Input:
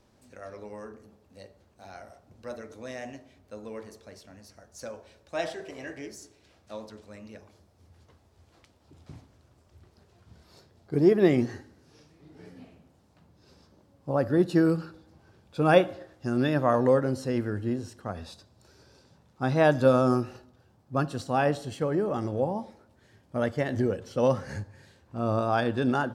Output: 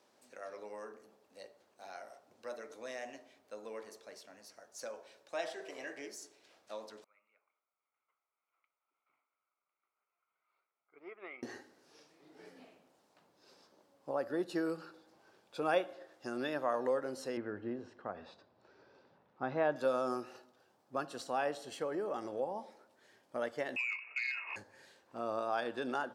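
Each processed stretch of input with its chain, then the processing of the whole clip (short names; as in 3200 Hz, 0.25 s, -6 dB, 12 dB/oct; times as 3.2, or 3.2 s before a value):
7.04–11.43 double band-pass 1700 Hz, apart 0.73 oct + air absorption 340 m + upward expander, over -54 dBFS
17.37–19.76 LPF 2300 Hz + low shelf 170 Hz +9.5 dB
23.76–24.56 inverted band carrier 2700 Hz + compressor 4:1, threshold -25 dBFS + core saturation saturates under 1400 Hz
whole clip: HPF 410 Hz 12 dB/oct; compressor 1.5:1, threshold -40 dBFS; gain -2 dB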